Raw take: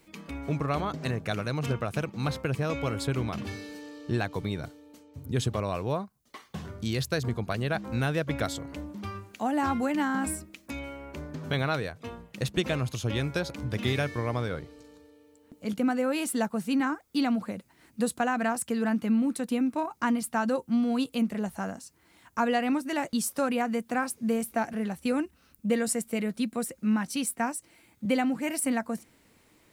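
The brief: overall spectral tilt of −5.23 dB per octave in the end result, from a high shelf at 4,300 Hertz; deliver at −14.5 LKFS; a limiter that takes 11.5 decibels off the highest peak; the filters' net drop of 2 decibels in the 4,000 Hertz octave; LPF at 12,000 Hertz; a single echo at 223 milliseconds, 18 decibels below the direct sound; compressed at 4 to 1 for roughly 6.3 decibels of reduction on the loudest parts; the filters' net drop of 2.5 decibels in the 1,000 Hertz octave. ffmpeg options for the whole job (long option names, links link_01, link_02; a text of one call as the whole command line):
ffmpeg -i in.wav -af "lowpass=12000,equalizer=frequency=1000:width_type=o:gain=-3.5,equalizer=frequency=4000:width_type=o:gain=-5,highshelf=frequency=4300:gain=5,acompressor=threshold=-29dB:ratio=4,alimiter=level_in=5.5dB:limit=-24dB:level=0:latency=1,volume=-5.5dB,aecho=1:1:223:0.126,volume=24dB" out.wav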